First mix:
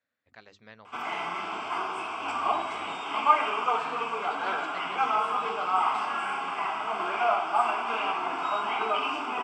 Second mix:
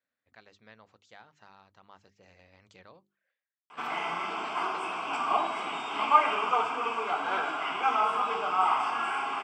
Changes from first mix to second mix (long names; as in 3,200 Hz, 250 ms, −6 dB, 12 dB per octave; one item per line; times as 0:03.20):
speech −4.0 dB
background: entry +2.85 s